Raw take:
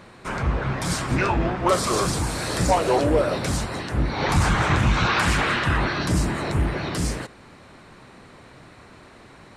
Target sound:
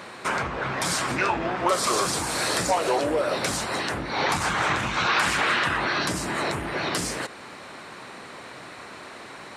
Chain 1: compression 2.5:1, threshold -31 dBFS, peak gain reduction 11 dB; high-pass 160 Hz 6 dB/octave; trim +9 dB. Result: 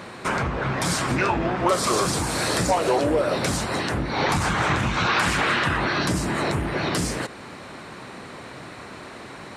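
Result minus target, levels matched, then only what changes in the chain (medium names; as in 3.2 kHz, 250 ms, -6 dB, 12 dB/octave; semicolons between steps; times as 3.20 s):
125 Hz band +6.5 dB
change: high-pass 520 Hz 6 dB/octave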